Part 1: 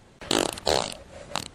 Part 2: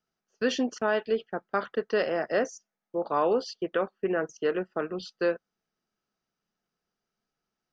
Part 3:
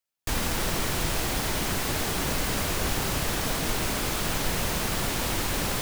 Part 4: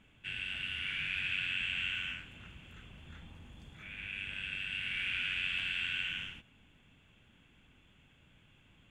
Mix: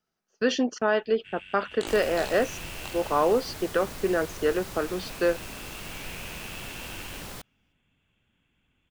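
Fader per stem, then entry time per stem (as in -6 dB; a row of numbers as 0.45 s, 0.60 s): -14.0 dB, +2.5 dB, -12.0 dB, -8.0 dB; 1.50 s, 0.00 s, 1.60 s, 1.00 s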